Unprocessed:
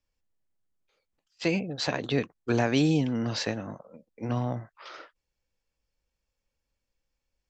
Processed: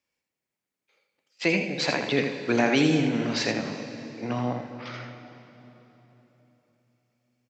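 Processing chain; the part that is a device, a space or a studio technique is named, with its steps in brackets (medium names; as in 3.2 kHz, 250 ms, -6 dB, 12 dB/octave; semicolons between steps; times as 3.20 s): PA in a hall (high-pass 170 Hz 12 dB/octave; peaking EQ 2.2 kHz +7 dB 0.46 oct; delay 81 ms -7 dB; reverberation RT60 3.7 s, pre-delay 40 ms, DRR 8 dB); trim +2 dB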